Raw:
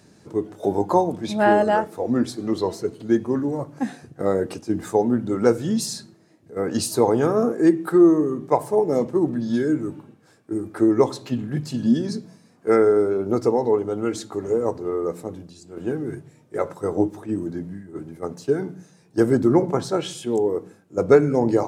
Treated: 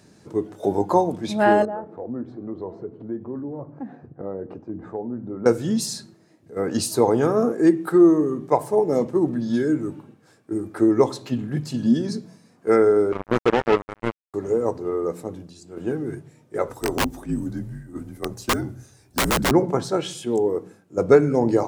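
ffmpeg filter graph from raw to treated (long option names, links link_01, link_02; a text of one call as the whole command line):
ffmpeg -i in.wav -filter_complex "[0:a]asettb=1/sr,asplit=3[link_01][link_02][link_03];[link_01]atrim=end=1.654[link_04];[link_02]atrim=start=1.65:end=5.46,asetpts=PTS-STARTPTS,afade=type=in:duration=0.004:curve=qsin,afade=type=out:start_time=3.806:duration=0.004:curve=qsin,lowpass=1000,acompressor=threshold=-34dB:ratio=2:attack=3.2:release=140:knee=1:detection=peak[link_05];[link_03]atrim=start=5.456[link_06];[link_04][link_05]acrossfade=duration=0.004:curve1=hsin:curve2=qsin[link_07];[link_07][link_06]acrossfade=duration=0.004:curve1=qsin:curve2=hsin,asettb=1/sr,asplit=3[link_08][link_09][link_10];[link_08]atrim=end=13.124[link_11];[link_09]atrim=start=13.12:end=14.34,asetpts=PTS-STARTPTS,afade=type=in:duration=0.004:curve=qsin,afade=type=out:start_time=1.216:duration=0.004:curve=qsin,agate=range=-33dB:threshold=-28dB:ratio=3:release=100:detection=peak,highshelf=frequency=5100:gain=-4.5,acrusher=bits=2:mix=0:aa=0.5[link_12];[link_10]atrim=start=14.336[link_13];[link_11][link_12]acrossfade=duration=0.004:curve1=hsin:curve2=qsin[link_14];[link_14][link_13]acrossfade=duration=0.004:curve1=qsin:curve2=hsin,asettb=1/sr,asplit=3[link_15][link_16][link_17];[link_15]atrim=end=16.684[link_18];[link_16]atrim=start=16.68:end=19.51,asetpts=PTS-STARTPTS,afade=type=in:duration=0.004:curve=qsin,afade=type=out:start_time=2.826:duration=0.004:curve=qsin,highshelf=frequency=8500:gain=11,aeval=exprs='(mod(5.31*val(0)+1,2)-1)/5.31':channel_layout=same,afreqshift=-57[link_19];[link_17]atrim=start=19.506[link_20];[link_18][link_19]acrossfade=duration=0.004:curve1=hsin:curve2=qsin[link_21];[link_21][link_20]acrossfade=duration=0.004:curve1=qsin:curve2=hsin" out.wav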